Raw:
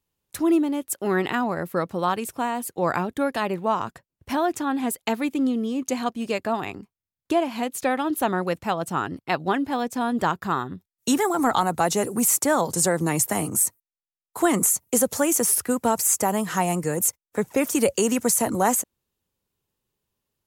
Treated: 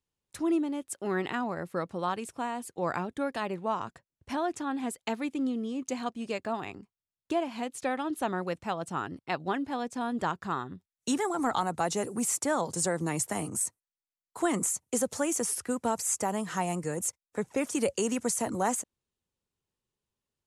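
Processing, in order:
low-pass filter 10,000 Hz 24 dB per octave
level −7.5 dB

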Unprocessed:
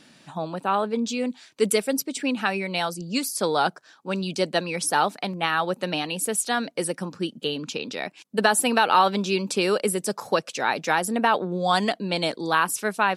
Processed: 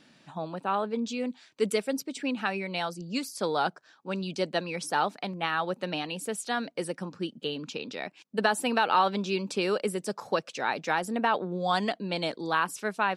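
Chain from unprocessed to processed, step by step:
parametric band 12,000 Hz −9.5 dB 1.2 octaves
level −5 dB

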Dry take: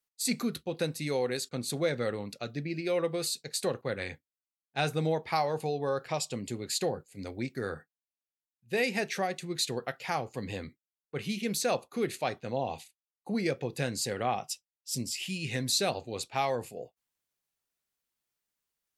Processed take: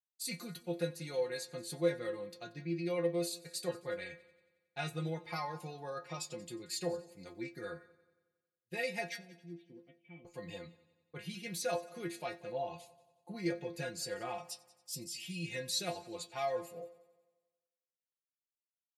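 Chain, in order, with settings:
0:09.16–0:10.25: formant resonators in series i
downward expander −49 dBFS
stiff-string resonator 170 Hz, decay 0.21 s, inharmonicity 0.002
echo machine with several playback heads 91 ms, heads first and second, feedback 46%, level −23.5 dB
level +2.5 dB

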